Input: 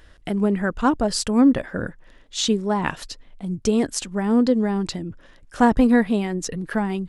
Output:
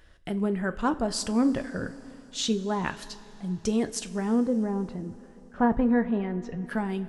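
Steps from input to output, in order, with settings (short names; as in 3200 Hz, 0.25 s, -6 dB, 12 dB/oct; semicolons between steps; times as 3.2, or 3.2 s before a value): 4.4–6.62 LPF 1100 Hz -> 2100 Hz 12 dB/oct; two-slope reverb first 0.26 s, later 3.8 s, from -18 dB, DRR 9 dB; gain -6.5 dB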